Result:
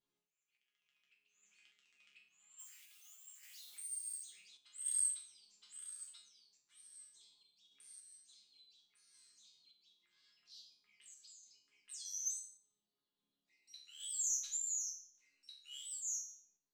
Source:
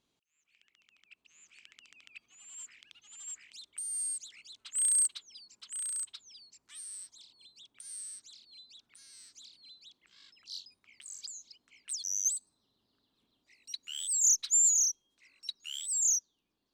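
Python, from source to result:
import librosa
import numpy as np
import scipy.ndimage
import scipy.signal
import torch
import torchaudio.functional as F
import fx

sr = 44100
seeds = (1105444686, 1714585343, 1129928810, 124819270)

y = fx.crossing_spikes(x, sr, level_db=-40.5, at=(2.59, 4.17))
y = fx.resonator_bank(y, sr, root=49, chord='major', decay_s=0.54)
y = fx.tremolo_random(y, sr, seeds[0], hz=3.5, depth_pct=55)
y = F.gain(torch.from_numpy(y), 8.0).numpy()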